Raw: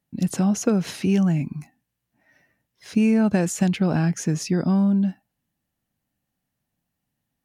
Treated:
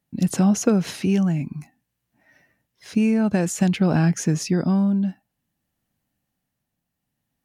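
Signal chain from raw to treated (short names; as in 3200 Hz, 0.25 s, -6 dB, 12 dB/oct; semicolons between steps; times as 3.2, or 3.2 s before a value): tremolo triangle 0.55 Hz, depth 40%; gain +3 dB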